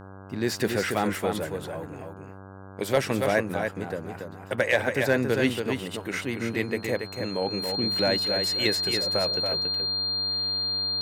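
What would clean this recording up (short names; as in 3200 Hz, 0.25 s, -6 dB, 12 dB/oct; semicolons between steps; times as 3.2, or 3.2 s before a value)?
clip repair -12 dBFS; de-hum 96.4 Hz, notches 17; notch 4200 Hz, Q 30; inverse comb 0.281 s -5.5 dB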